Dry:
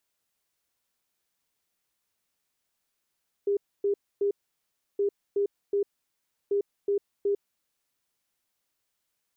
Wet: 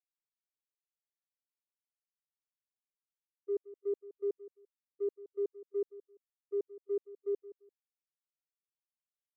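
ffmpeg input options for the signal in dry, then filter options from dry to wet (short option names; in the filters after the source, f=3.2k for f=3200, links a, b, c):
-f lavfi -i "aevalsrc='0.0794*sin(2*PI*403*t)*clip(min(mod(mod(t,1.52),0.37),0.1-mod(mod(t,1.52),0.37))/0.005,0,1)*lt(mod(t,1.52),1.11)':d=4.56:s=44100"
-af "agate=range=-39dB:threshold=-25dB:ratio=16:detection=peak,aecho=1:1:171|342:0.15|0.0359"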